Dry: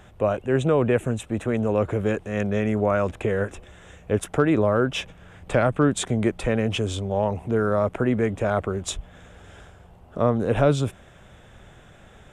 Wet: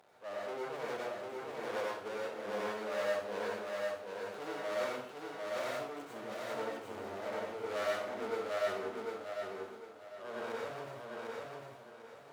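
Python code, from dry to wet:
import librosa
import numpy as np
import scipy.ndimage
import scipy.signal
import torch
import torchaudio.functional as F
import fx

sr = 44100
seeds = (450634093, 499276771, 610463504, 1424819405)

y = scipy.signal.medfilt(x, 25)
y = y * (1.0 - 0.87 / 2.0 + 0.87 / 2.0 * np.cos(2.0 * np.pi * 2.3 * (np.arange(len(y)) / sr)))
y = fx.tube_stage(y, sr, drive_db=31.0, bias=0.6)
y = fx.hpss(y, sr, part='percussive', gain_db=-13)
y = np.maximum(y, 0.0)
y = scipy.signal.sosfilt(scipy.signal.butter(2, 530.0, 'highpass', fs=sr, output='sos'), y)
y = fx.echo_feedback(y, sr, ms=750, feedback_pct=30, wet_db=-3.0)
y = fx.rev_plate(y, sr, seeds[0], rt60_s=0.53, hf_ratio=0.95, predelay_ms=80, drr_db=-4.0)
y = y * librosa.db_to_amplitude(6.0)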